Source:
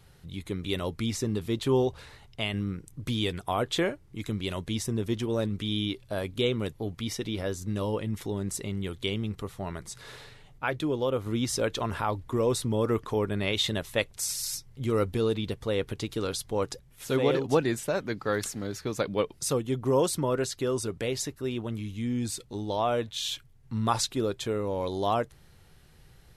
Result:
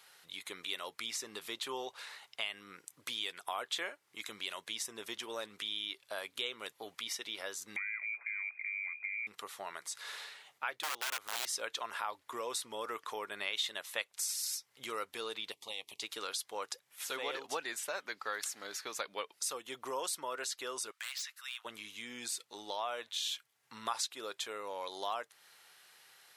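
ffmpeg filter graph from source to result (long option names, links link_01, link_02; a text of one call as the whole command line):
ffmpeg -i in.wav -filter_complex "[0:a]asettb=1/sr,asplit=3[link_01][link_02][link_03];[link_01]atrim=end=7.764[link_04];[link_02]atrim=start=7.76:end=9.27,asetpts=PTS-STARTPTS,afade=type=in:duration=0.004:curve=qsin,afade=type=out:start_time=1.506:duration=0.004:curve=qsin,acrossover=split=210|740[link_05][link_06][link_07];[link_05]acompressor=threshold=-38dB:ratio=4[link_08];[link_06]acompressor=threshold=-40dB:ratio=4[link_09];[link_07]acompressor=threshold=-49dB:ratio=4[link_10];[link_08][link_09][link_10]amix=inputs=3:normalize=0,lowpass=frequency=2100:width_type=q:width=0.5098,lowpass=frequency=2100:width_type=q:width=0.6013,lowpass=frequency=2100:width_type=q:width=0.9,lowpass=frequency=2100:width_type=q:width=2.563,afreqshift=-2500,equalizer=frequency=540:width_type=o:width=0.33:gain=-3.5[link_11];[link_03]atrim=start=9.266[link_12];[link_04][link_11]acrossfade=duration=0.004:curve1=hsin:curve2=qsin[link_13];[link_13][link_12]acrossfade=duration=0.004:curve1=qsin:curve2=hsin,asettb=1/sr,asplit=3[link_14][link_15][link_16];[link_14]atrim=end=10.834[link_17];[link_15]atrim=start=10.83:end=11.46,asetpts=PTS-STARTPTS,afade=type=in:duration=0.004:curve=qsin,afade=type=out:start_time=0.626:duration=0.004:curve=qsin,aeval=exprs='(mod(15.8*val(0)+1,2)-1)/15.8':channel_layout=same,equalizer=frequency=270:width=1.7:gain=-3.5[link_18];[link_16]atrim=start=11.456[link_19];[link_17][link_18]acrossfade=duration=0.004:curve1=hsin:curve2=qsin[link_20];[link_20][link_19]acrossfade=duration=0.004:curve1=qsin:curve2=hsin,asettb=1/sr,asplit=3[link_21][link_22][link_23];[link_21]atrim=end=15.524[link_24];[link_22]atrim=start=15.52:end=16.02,asetpts=PTS-STARTPTS,afade=type=in:duration=0.004:curve=qsin,afade=type=out:start_time=0.496:duration=0.004:curve=qsin,equalizer=frequency=420:width_type=o:width=1.2:gain=-12,tremolo=f=300:d=0.519,asuperstop=centerf=1500:order=4:qfactor=1.1[link_25];[link_23]atrim=start=16.016[link_26];[link_24][link_25]acrossfade=duration=0.004:curve1=hsin:curve2=qsin[link_27];[link_27][link_26]acrossfade=duration=0.004:curve1=qsin:curve2=hsin,asettb=1/sr,asplit=3[link_28][link_29][link_30];[link_28]atrim=end=20.914[link_31];[link_29]atrim=start=20.91:end=21.65,asetpts=PTS-STARTPTS,afade=type=in:duration=0.004:curve=qsin,afade=type=out:start_time=0.736:duration=0.004:curve=qsin,highpass=frequency=1300:width=0.5412,highpass=frequency=1300:width=1.3066,acrossover=split=6100[link_32][link_33];[link_33]acompressor=threshold=-52dB:ratio=4:attack=1:release=60[link_34];[link_32][link_34]amix=inputs=2:normalize=0,aeval=exprs='0.0224*(abs(mod(val(0)/0.0224+3,4)-2)-1)':channel_layout=same[link_35];[link_30]atrim=start=21.646[link_36];[link_31][link_35]acrossfade=duration=0.004:curve1=hsin:curve2=qsin[link_37];[link_37][link_36]acrossfade=duration=0.004:curve1=qsin:curve2=hsin,highpass=1000,acompressor=threshold=-45dB:ratio=2,volume=4dB" out.wav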